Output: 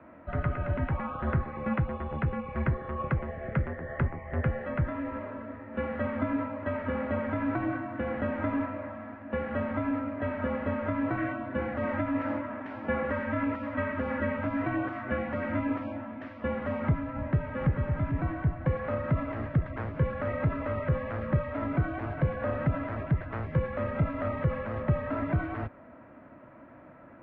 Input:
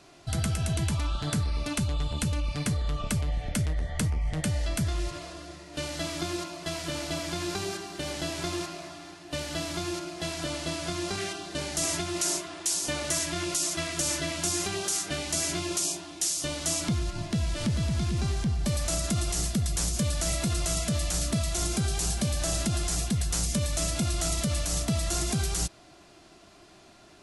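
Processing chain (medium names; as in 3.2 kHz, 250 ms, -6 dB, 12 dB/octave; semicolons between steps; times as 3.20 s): mistuned SSB -71 Hz 150–2000 Hz; trim +4.5 dB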